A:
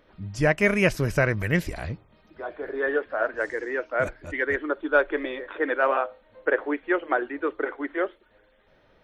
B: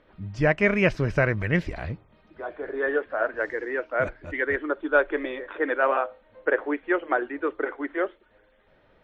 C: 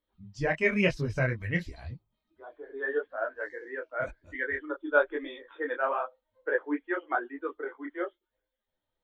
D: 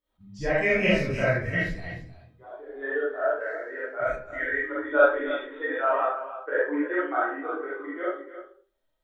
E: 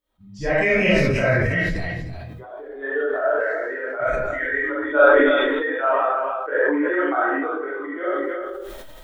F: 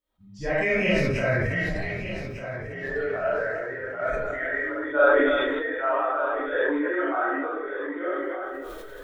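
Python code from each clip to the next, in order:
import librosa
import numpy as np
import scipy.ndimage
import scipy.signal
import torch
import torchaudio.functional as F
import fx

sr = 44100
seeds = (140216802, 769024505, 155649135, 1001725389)

y1 = scipy.signal.sosfilt(scipy.signal.butter(2, 3600.0, 'lowpass', fs=sr, output='sos'), x)
y2 = fx.bin_expand(y1, sr, power=1.5)
y2 = fx.high_shelf(y2, sr, hz=3400.0, db=7.0)
y2 = fx.detune_double(y2, sr, cents=33)
y3 = y2 + 10.0 ** (-12.5 / 20.0) * np.pad(y2, (int(306 * sr / 1000.0), 0))[:len(y2)]
y3 = fx.rev_freeverb(y3, sr, rt60_s=0.47, hf_ratio=0.55, predelay_ms=5, drr_db=-8.0)
y3 = fx.attack_slew(y3, sr, db_per_s=510.0)
y3 = y3 * librosa.db_to_amplitude(-4.0)
y4 = fx.sustainer(y3, sr, db_per_s=22.0)
y4 = y4 * librosa.db_to_amplitude(3.5)
y5 = fx.echo_feedback(y4, sr, ms=1199, feedback_pct=27, wet_db=-11)
y5 = y5 * librosa.db_to_amplitude(-5.0)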